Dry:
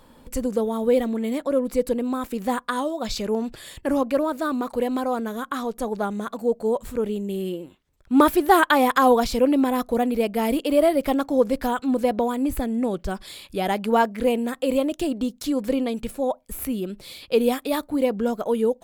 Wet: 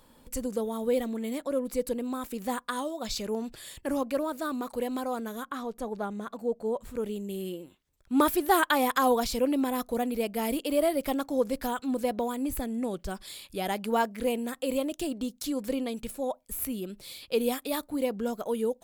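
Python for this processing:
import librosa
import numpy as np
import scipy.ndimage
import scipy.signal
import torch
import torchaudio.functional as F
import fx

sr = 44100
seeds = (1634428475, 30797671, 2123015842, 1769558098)

y = fx.high_shelf(x, sr, hz=4000.0, db=fx.steps((0.0, 7.5), (5.43, -2.5), (6.94, 8.0)))
y = F.gain(torch.from_numpy(y), -7.5).numpy()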